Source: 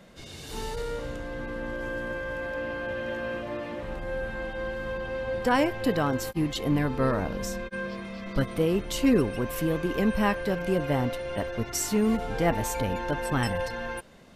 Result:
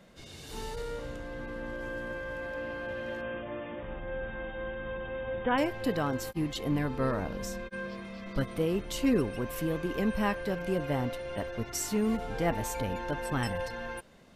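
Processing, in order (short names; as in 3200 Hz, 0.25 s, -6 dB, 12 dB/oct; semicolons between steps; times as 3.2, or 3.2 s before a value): 3.21–5.58 brick-wall FIR low-pass 3700 Hz; gain -4.5 dB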